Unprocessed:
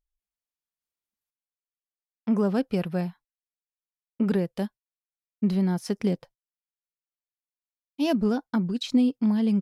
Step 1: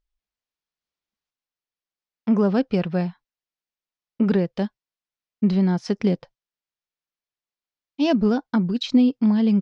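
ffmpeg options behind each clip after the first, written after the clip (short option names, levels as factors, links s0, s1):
-af "lowpass=f=5800:w=0.5412,lowpass=f=5800:w=1.3066,volume=1.68"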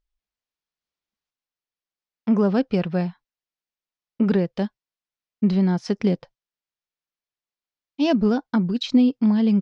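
-af anull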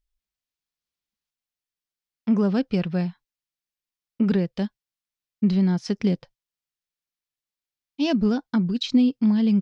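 -af "equalizer=f=710:t=o:w=2.8:g=-7,volume=1.19"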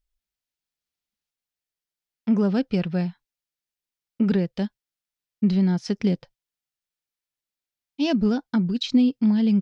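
-af "bandreject=f=1100:w=12"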